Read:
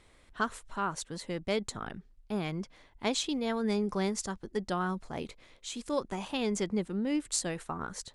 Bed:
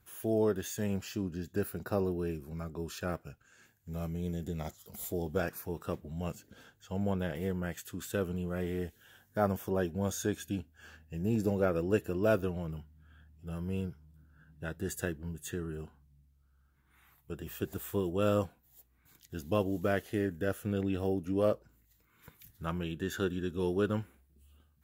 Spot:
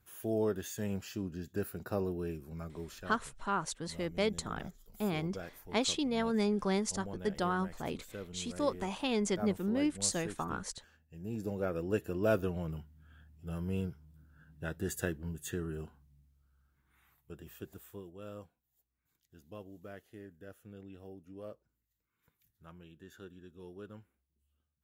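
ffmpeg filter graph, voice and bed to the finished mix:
ffmpeg -i stem1.wav -i stem2.wav -filter_complex "[0:a]adelay=2700,volume=-0.5dB[link_01];[1:a]volume=8.5dB,afade=type=out:start_time=2.71:duration=0.4:silence=0.375837,afade=type=in:start_time=11.13:duration=1.5:silence=0.266073,afade=type=out:start_time=15.89:duration=2.24:silence=0.125893[link_02];[link_01][link_02]amix=inputs=2:normalize=0" out.wav

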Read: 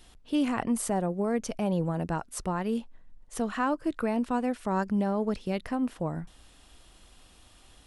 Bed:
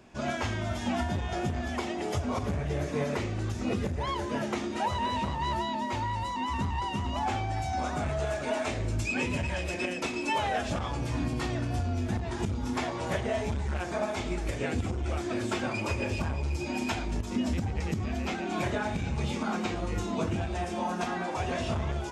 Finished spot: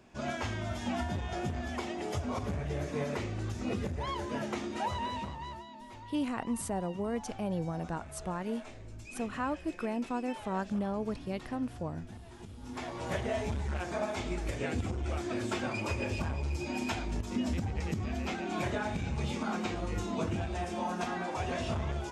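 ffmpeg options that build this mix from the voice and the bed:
ffmpeg -i stem1.wav -i stem2.wav -filter_complex "[0:a]adelay=5800,volume=-6dB[link_01];[1:a]volume=10dB,afade=type=out:start_time=4.9:duration=0.75:silence=0.223872,afade=type=in:start_time=12.55:duration=0.64:silence=0.199526[link_02];[link_01][link_02]amix=inputs=2:normalize=0" out.wav

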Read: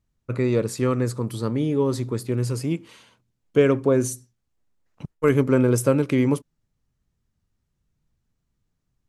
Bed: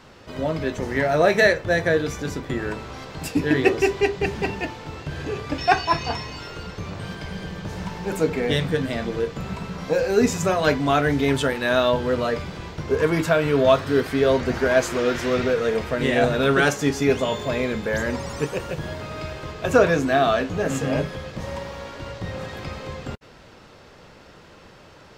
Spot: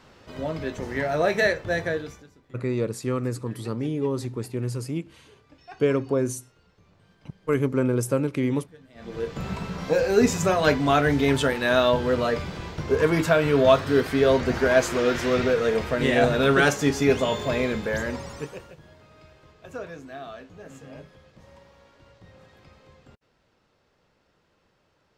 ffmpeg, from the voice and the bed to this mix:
ffmpeg -i stem1.wav -i stem2.wav -filter_complex "[0:a]adelay=2250,volume=-4.5dB[link_01];[1:a]volume=21.5dB,afade=type=out:start_time=1.8:duration=0.48:silence=0.0794328,afade=type=in:start_time=8.94:duration=0.51:silence=0.0473151,afade=type=out:start_time=17.66:duration=1.11:silence=0.105925[link_02];[link_01][link_02]amix=inputs=2:normalize=0" out.wav

